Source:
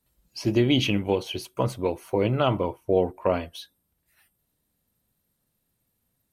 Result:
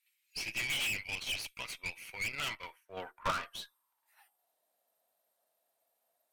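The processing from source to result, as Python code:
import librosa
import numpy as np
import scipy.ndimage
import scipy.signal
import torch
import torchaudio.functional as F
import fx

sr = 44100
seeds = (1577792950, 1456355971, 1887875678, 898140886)

y = fx.filter_sweep_highpass(x, sr, from_hz=2300.0, to_hz=660.0, start_s=2.28, end_s=4.63, q=6.1)
y = fx.tube_stage(y, sr, drive_db=32.0, bias=0.75)
y = fx.band_widen(y, sr, depth_pct=100, at=(2.55, 3.31))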